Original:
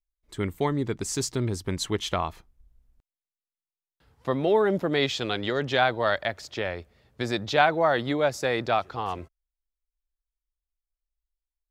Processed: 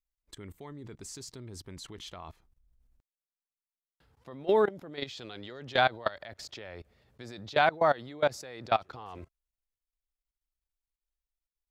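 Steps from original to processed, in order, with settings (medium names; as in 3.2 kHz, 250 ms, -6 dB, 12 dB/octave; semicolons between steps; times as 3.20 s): dynamic bell 4.4 kHz, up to +4 dB, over -44 dBFS, Q 2.8; level held to a coarse grid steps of 22 dB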